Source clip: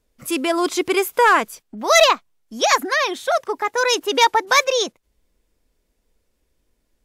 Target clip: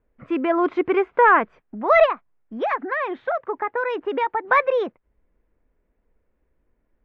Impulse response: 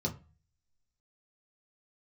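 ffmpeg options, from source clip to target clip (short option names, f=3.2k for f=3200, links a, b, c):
-filter_complex "[0:a]lowpass=f=2k:w=0.5412,lowpass=f=2k:w=1.3066,asplit=3[a][b][c];[a]afade=t=out:st=2.05:d=0.02[d];[b]acompressor=threshold=-22dB:ratio=3,afade=t=in:st=2.05:d=0.02,afade=t=out:st=4.43:d=0.02[e];[c]afade=t=in:st=4.43:d=0.02[f];[d][e][f]amix=inputs=3:normalize=0"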